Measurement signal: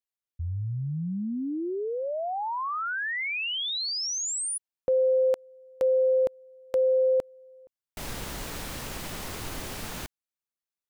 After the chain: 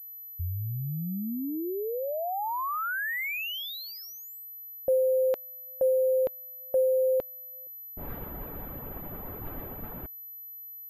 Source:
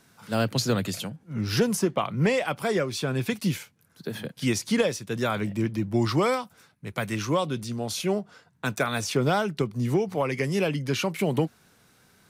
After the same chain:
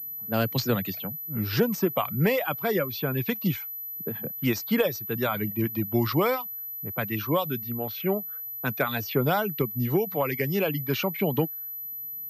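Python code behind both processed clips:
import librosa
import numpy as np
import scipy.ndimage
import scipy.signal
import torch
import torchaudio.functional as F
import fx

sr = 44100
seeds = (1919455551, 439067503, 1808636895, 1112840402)

y = fx.dereverb_blind(x, sr, rt60_s=0.6)
y = fx.env_lowpass(y, sr, base_hz=330.0, full_db=-23.0)
y = fx.pwm(y, sr, carrier_hz=12000.0)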